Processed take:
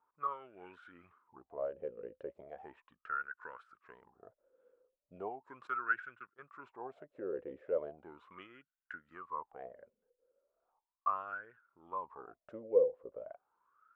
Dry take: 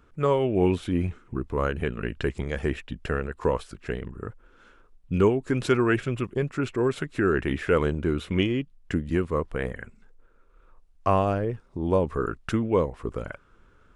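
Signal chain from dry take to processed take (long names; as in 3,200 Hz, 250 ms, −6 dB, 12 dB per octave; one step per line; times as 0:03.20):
LFO wah 0.37 Hz 500–1,500 Hz, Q 17
0:05.67–0:06.40: noise gate −57 dBFS, range −14 dB
level +3 dB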